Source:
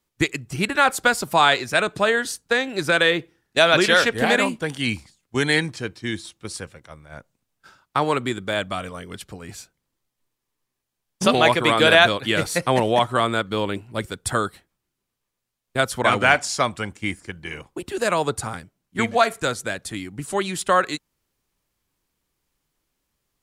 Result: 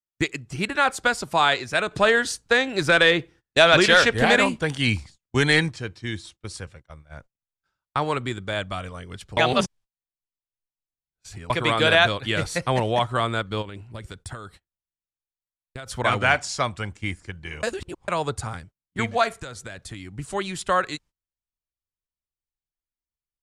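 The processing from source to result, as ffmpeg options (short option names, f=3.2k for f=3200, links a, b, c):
-filter_complex "[0:a]asettb=1/sr,asplit=3[a][b][c];[a]atrim=end=1.914[d];[b]atrim=start=1.91:end=5.69,asetpts=PTS-STARTPTS,afade=t=in:d=0.004:c=qsin,afade=t=out:st=3.776:d=0.004:c=qsin,acontrast=28[e];[c]atrim=start=5.686[f];[d][e]acrossfade=d=0.004:c1=hsin:c2=qsin[g];[g][f]acrossfade=d=0.004:c1=qsin:c2=hsin,asplit=3[h][i][j];[h]afade=t=out:st=13.61:d=0.02[k];[i]acompressor=threshold=-29dB:ratio=12:attack=3.2:release=140:knee=1:detection=peak,afade=t=in:st=13.61:d=0.02,afade=t=out:st=15.86:d=0.02[l];[j]afade=t=in:st=15.86:d=0.02[m];[k][l][m]amix=inputs=3:normalize=0,asettb=1/sr,asplit=3[n][o][p];[n]atrim=end=19.404[q];[o]atrim=start=19.4:end=20.12,asetpts=PTS-STARTPTS,afade=t=in:d=0.004:c=qsin,afade=t=out:st=0.716:d=0.004:c=qsin,acompressor=threshold=-29dB:ratio=6:attack=3.2:release=140:knee=1:detection=peak[r];[p]atrim=start=20.116[s];[q][r]acrossfade=d=0.004:c1=hsin:c2=qsin[t];[t][s]acrossfade=d=0.004:c1=qsin:c2=hsin,asplit=5[u][v][w][x][y];[u]atrim=end=9.372[z];[v]atrim=start=9.368:end=11.502,asetpts=PTS-STARTPTS,areverse[aa];[w]atrim=start=11.498:end=17.632[ab];[x]atrim=start=17.628:end=18.082,asetpts=PTS-STARTPTS,areverse[ac];[y]atrim=start=18.078[ad];[z][aa]acrossfade=d=0.004:c1=hsin:c2=hsin[ae];[ae][ab]acrossfade=d=0.004:c1=hsin:c2=hsin[af];[af][ac]acrossfade=d=0.004:c1=hsin:c2=hsin[ag];[ag][ad]acrossfade=d=0.004:c1=hsin:c2=hsin,agate=range=-24dB:threshold=-44dB:ratio=16:detection=peak,asubboost=boost=3:cutoff=120,lowpass=8.6k,volume=-3dB"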